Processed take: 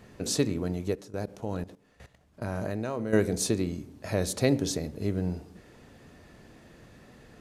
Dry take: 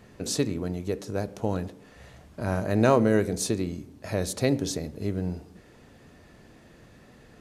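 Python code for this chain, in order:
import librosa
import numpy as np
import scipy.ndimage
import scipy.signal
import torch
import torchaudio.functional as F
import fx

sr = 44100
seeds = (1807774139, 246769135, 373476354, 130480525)

y = fx.level_steps(x, sr, step_db=16, at=(0.93, 3.13))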